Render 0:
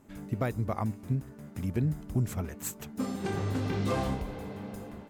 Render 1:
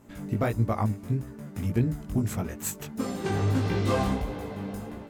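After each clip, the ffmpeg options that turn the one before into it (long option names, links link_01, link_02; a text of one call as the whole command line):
ffmpeg -i in.wav -af "flanger=delay=17:depth=3.1:speed=1.6,volume=7.5dB" out.wav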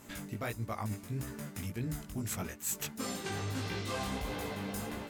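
ffmpeg -i in.wav -af "tiltshelf=frequency=1300:gain=-6.5,areverse,acompressor=threshold=-39dB:ratio=6,areverse,volume=4.5dB" out.wav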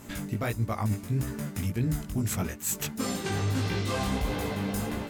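ffmpeg -i in.wav -af "lowshelf=frequency=300:gain=5.5,volume=5dB" out.wav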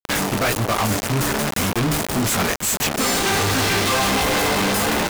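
ffmpeg -i in.wav -filter_complex "[0:a]acrusher=bits=5:mix=0:aa=0.000001,asplit=2[link_01][link_02];[link_02]highpass=frequency=720:poles=1,volume=33dB,asoftclip=type=tanh:threshold=-15.5dB[link_03];[link_01][link_03]amix=inputs=2:normalize=0,lowpass=frequency=8000:poles=1,volume=-6dB,volume=3dB" out.wav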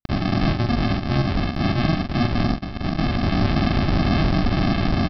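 ffmpeg -i in.wav -filter_complex "[0:a]aresample=11025,acrusher=samples=23:mix=1:aa=0.000001,aresample=44100,asplit=2[link_01][link_02];[link_02]adelay=44,volume=-6dB[link_03];[link_01][link_03]amix=inputs=2:normalize=0" out.wav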